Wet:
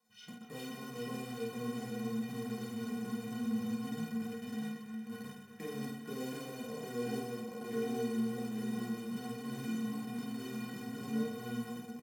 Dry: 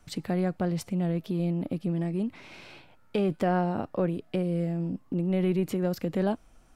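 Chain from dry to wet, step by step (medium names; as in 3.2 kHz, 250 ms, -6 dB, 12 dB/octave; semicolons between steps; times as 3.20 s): low-pass that closes with the level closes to 790 Hz, closed at -22.5 dBFS; tempo 0.78×; chorus voices 4, 0.92 Hz, delay 20 ms, depth 3 ms; ever faster or slower copies 282 ms, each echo -1 st, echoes 3; in parallel at -7 dB: bit crusher 5-bit; on the sum: tape speed -28%; companded quantiser 6-bit; high-pass 160 Hz 12 dB/octave; inharmonic resonator 220 Hz, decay 0.25 s, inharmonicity 0.03; on a send: reverse bouncing-ball echo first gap 50 ms, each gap 1.5×, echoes 5; on the sum: trim +1 dB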